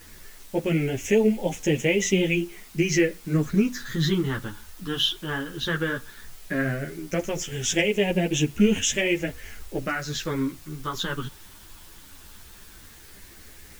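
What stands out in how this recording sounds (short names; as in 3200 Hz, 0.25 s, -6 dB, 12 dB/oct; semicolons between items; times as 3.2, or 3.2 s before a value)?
phasing stages 6, 0.15 Hz, lowest notch 600–1200 Hz; a quantiser's noise floor 8-bit, dither triangular; a shimmering, thickened sound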